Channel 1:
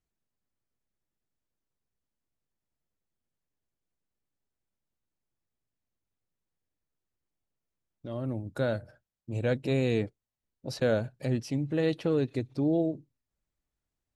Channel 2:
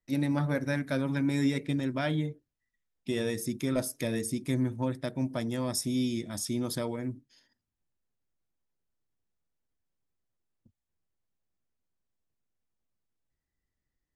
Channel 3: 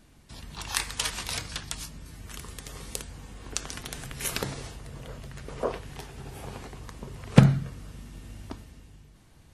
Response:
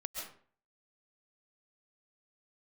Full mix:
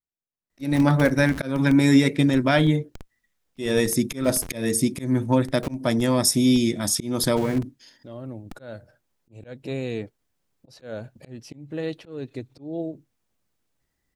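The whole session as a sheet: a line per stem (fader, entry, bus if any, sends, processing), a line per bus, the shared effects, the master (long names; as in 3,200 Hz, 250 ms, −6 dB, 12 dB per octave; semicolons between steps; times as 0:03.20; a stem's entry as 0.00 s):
−11.5 dB, 0.00 s, no send, no processing
+2.0 dB, 0.50 s, no send, no processing
−10.5 dB, 0.00 s, no send, low-pass filter 3,600 Hz 6 dB per octave; comparator with hysteresis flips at −27.5 dBFS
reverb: not used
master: low-shelf EQ 96 Hz −6 dB; volume swells 222 ms; automatic gain control gain up to 10 dB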